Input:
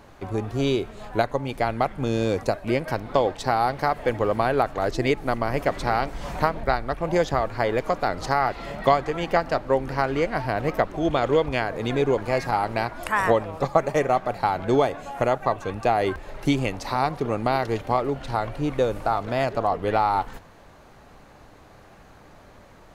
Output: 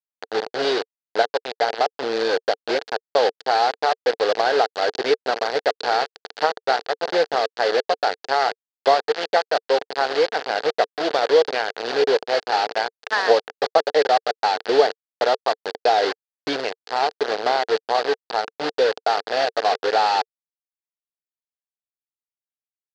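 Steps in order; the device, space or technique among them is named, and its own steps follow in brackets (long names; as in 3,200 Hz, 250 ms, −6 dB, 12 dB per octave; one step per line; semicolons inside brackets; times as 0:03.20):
hand-held game console (bit reduction 4 bits; loudspeaker in its box 450–4,900 Hz, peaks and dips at 450 Hz +10 dB, 750 Hz +5 dB, 1,100 Hz −5 dB, 1,600 Hz +5 dB, 2,300 Hz −5 dB, 4,500 Hz +8 dB)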